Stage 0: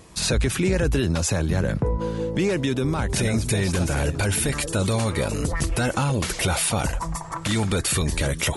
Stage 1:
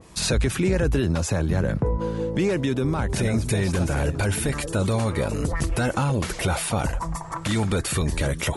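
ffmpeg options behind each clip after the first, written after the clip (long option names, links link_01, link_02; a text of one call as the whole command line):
ffmpeg -i in.wav -af "adynamicequalizer=threshold=0.01:dfrequency=2100:dqfactor=0.7:tfrequency=2100:tqfactor=0.7:attack=5:release=100:ratio=0.375:range=3:mode=cutabove:tftype=highshelf" out.wav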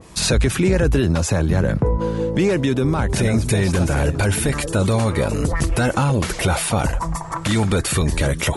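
ffmpeg -i in.wav -af "acontrast=26" out.wav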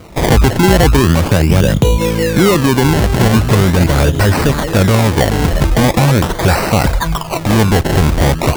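ffmpeg -i in.wav -af "acrusher=samples=25:mix=1:aa=0.000001:lfo=1:lforange=25:lforate=0.41,volume=7.5dB" out.wav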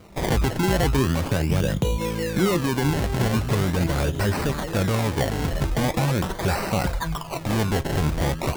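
ffmpeg -i in.wav -af "flanger=delay=5:depth=2.6:regen=77:speed=0.46:shape=sinusoidal,volume=-7dB" out.wav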